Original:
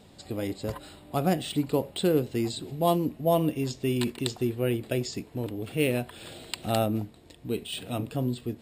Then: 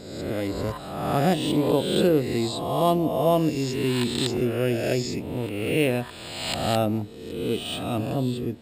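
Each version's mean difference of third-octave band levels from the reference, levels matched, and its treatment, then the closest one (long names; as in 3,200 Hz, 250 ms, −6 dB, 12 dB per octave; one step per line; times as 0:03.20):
6.0 dB: peak hold with a rise ahead of every peak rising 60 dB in 1.17 s
high-shelf EQ 5,000 Hz −5.5 dB
level +2 dB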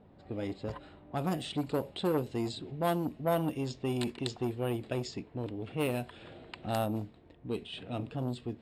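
4.0 dB: low-pass that shuts in the quiet parts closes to 1,300 Hz, open at −21.5 dBFS
saturating transformer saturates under 810 Hz
level −4 dB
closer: second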